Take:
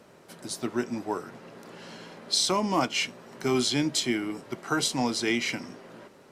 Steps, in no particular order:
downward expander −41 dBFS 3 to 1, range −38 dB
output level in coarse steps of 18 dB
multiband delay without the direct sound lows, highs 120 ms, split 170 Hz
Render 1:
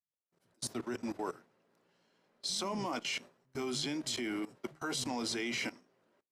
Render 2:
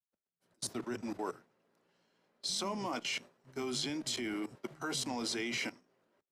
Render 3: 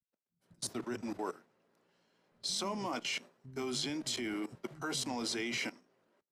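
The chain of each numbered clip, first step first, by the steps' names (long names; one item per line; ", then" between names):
multiband delay without the direct sound, then output level in coarse steps, then downward expander
output level in coarse steps, then multiband delay without the direct sound, then downward expander
output level in coarse steps, then downward expander, then multiband delay without the direct sound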